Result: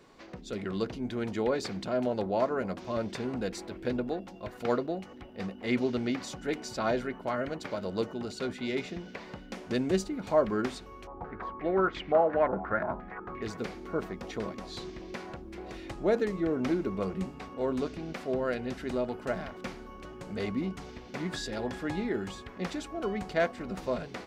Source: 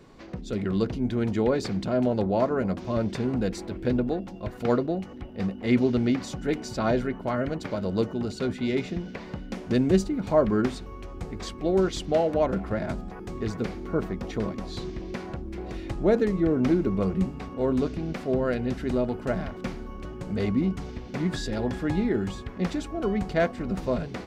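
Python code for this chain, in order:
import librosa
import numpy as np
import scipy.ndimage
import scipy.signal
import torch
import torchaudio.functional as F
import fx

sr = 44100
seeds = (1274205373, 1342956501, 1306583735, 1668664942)

y = fx.low_shelf(x, sr, hz=280.0, db=-11.0)
y = fx.filter_held_lowpass(y, sr, hz=5.7, low_hz=880.0, high_hz=2200.0, at=(11.07, 13.42))
y = y * 10.0 ** (-1.5 / 20.0)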